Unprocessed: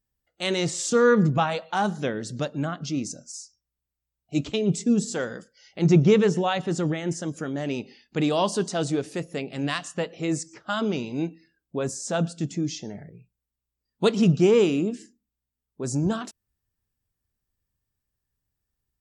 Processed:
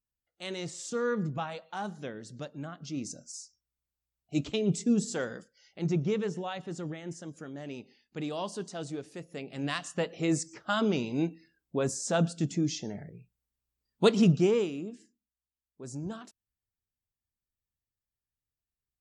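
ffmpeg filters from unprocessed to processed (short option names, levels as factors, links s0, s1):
-af "volume=2,afade=t=in:st=2.79:d=0.4:silence=0.421697,afade=t=out:st=5.27:d=0.7:silence=0.421697,afade=t=in:st=9.23:d=0.95:silence=0.298538,afade=t=out:st=14.15:d=0.55:silence=0.266073"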